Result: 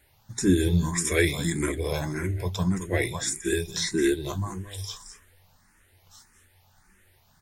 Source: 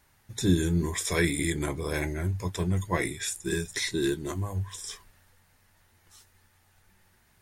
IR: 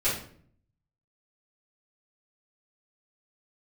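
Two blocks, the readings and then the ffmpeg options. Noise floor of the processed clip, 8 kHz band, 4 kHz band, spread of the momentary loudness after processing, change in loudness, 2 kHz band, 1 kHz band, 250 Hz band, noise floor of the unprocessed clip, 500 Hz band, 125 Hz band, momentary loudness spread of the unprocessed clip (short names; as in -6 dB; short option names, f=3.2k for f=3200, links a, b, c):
-62 dBFS, +3.0 dB, +2.5 dB, 13 LU, +2.5 dB, +2.0 dB, +0.5 dB, +3.0 dB, -65 dBFS, +4.0 dB, +1.5 dB, 9 LU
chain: -filter_complex "[0:a]aecho=1:1:219:0.282,asplit=2[a][b];[b]afreqshift=1.7[c];[a][c]amix=inputs=2:normalize=1,volume=5dB"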